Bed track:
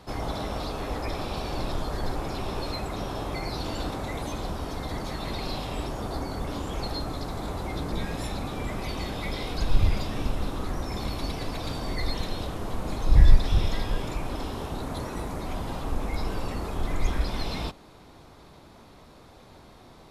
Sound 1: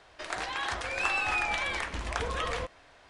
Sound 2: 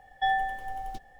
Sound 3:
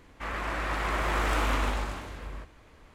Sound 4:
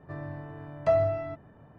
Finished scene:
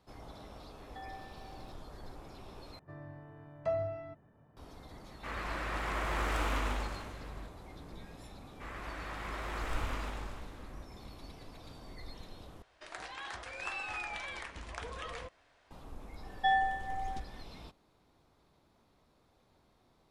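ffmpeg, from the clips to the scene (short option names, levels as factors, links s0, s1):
-filter_complex "[2:a]asplit=2[s0][s1];[3:a]asplit=2[s2][s3];[0:a]volume=0.119[s4];[s0]alimiter=limit=0.0708:level=0:latency=1:release=71[s5];[s1]aresample=22050,aresample=44100[s6];[s4]asplit=3[s7][s8][s9];[s7]atrim=end=2.794[s10];[4:a]atrim=end=1.78,asetpts=PTS-STARTPTS,volume=0.316[s11];[s8]atrim=start=4.566:end=12.624[s12];[1:a]atrim=end=3.09,asetpts=PTS-STARTPTS,volume=0.299[s13];[s9]atrim=start=15.706[s14];[s5]atrim=end=1.19,asetpts=PTS-STARTPTS,volume=0.126,afade=t=in:d=0.004:c=hsin,afade=t=out:st=1.186:d=0.004:c=hsin,adelay=740[s15];[s2]atrim=end=2.94,asetpts=PTS-STARTPTS,volume=0.501,afade=t=in:d=0.004:c=hsin,afade=t=out:st=2.936:d=0.004:c=hsin,adelay=5030[s16];[s3]atrim=end=2.94,asetpts=PTS-STARTPTS,volume=0.266,afade=t=in:d=0.004:c=hsin,afade=t=out:st=2.936:d=0.004:c=hsin,adelay=8400[s17];[s6]atrim=end=1.19,asetpts=PTS-STARTPTS,volume=0.794,afade=t=in:d=0.004:c=hsin,afade=t=out:st=1.186:d=0.004:c=hsin,adelay=16220[s18];[s10][s11]acrossfade=d=0.004:c1=hsin:c2=hsin[s19];[s19][s12]acrossfade=d=0.004:c1=hsin:c2=hsin[s20];[s20][s13]acrossfade=d=0.004:c1=hsin:c2=hsin[s21];[s21][s14]acrossfade=d=0.004:c1=hsin:c2=hsin[s22];[s22][s15][s16][s17][s18]amix=inputs=5:normalize=0"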